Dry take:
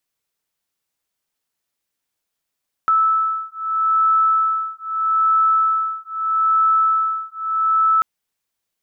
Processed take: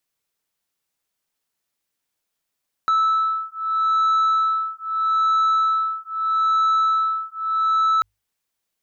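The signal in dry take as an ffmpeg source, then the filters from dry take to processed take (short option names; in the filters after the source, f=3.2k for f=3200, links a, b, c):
-f lavfi -i "aevalsrc='0.126*(sin(2*PI*1310*t)+sin(2*PI*1310.79*t))':d=5.14:s=44100"
-af "bandreject=f=50:t=h:w=6,bandreject=f=100:t=h:w=6,asoftclip=type=tanh:threshold=-14.5dB"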